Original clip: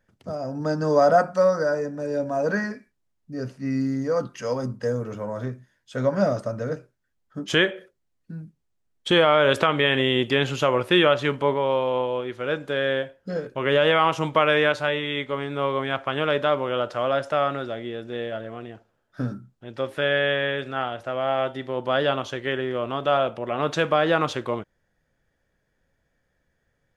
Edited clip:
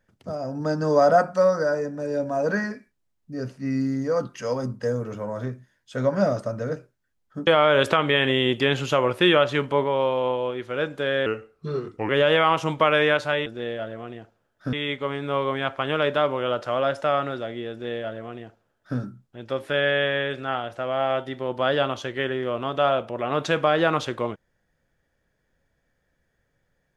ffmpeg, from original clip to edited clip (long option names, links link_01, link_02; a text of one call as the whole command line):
ffmpeg -i in.wav -filter_complex "[0:a]asplit=6[link_01][link_02][link_03][link_04][link_05][link_06];[link_01]atrim=end=7.472[link_07];[link_02]atrim=start=9.168:end=12.964[link_08];[link_03]atrim=start=12.96:end=13.64,asetpts=PTS-STARTPTS,asetrate=36162,aresample=44100[link_09];[link_04]atrim=start=13.636:end=15.012[link_10];[link_05]atrim=start=17.988:end=19.262[link_11];[link_06]atrim=start=15.008[link_12];[link_07][link_08]acrossfade=duration=0.004:curve1=hsin:curve2=hsin[link_13];[link_13][link_09]acrossfade=duration=0.004:curve1=hsin:curve2=hsin[link_14];[link_14][link_10]acrossfade=duration=0.004:curve1=hsin:curve2=hsin[link_15];[link_15][link_11]acrossfade=duration=0.004:curve1=hsin:curve2=hsin[link_16];[link_16][link_12]acrossfade=duration=0.004:curve1=hsin:curve2=hsin" out.wav